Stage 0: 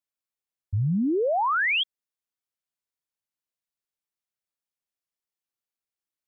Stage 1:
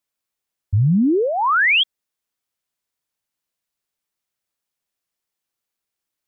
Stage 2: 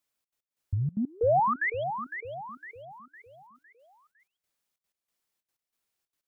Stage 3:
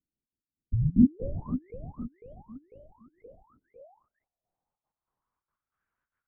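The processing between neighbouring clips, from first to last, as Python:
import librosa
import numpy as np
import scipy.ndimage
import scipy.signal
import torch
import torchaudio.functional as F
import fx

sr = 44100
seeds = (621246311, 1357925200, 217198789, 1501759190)

y1 = fx.dynamic_eq(x, sr, hz=660.0, q=1.6, threshold_db=-40.0, ratio=4.0, max_db=-7)
y1 = y1 * librosa.db_to_amplitude(8.5)
y2 = fx.over_compress(y1, sr, threshold_db=-21.0, ratio=-1.0)
y2 = fx.step_gate(y2, sr, bpm=186, pattern='xxx.x..x', floor_db=-24.0, edge_ms=4.5)
y2 = fx.echo_feedback(y2, sr, ms=507, feedback_pct=43, wet_db=-9.0)
y2 = y2 * librosa.db_to_amplitude(-4.5)
y3 = fx.filter_sweep_lowpass(y2, sr, from_hz=240.0, to_hz=1500.0, start_s=2.16, end_s=5.92, q=4.3)
y3 = fx.lpc_vocoder(y3, sr, seeds[0], excitation='whisper', order=8)
y3 = fx.record_warp(y3, sr, rpm=78.0, depth_cents=160.0)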